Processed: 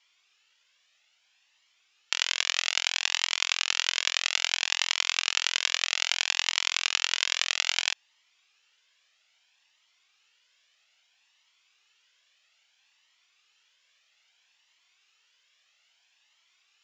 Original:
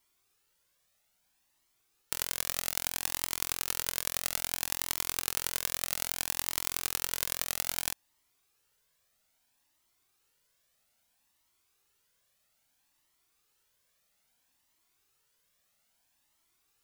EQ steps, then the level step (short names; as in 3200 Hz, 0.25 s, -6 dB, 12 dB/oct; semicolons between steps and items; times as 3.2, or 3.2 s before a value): HPF 650 Hz 12 dB/oct; rippled Chebyshev low-pass 7300 Hz, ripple 3 dB; bell 3000 Hz +12.5 dB 1.2 oct; +5.0 dB